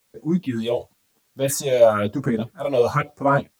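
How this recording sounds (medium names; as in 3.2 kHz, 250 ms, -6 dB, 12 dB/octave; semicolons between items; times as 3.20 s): phasing stages 4, 1 Hz, lowest notch 210–3400 Hz; a quantiser's noise floor 12-bit, dither triangular; a shimmering, thickened sound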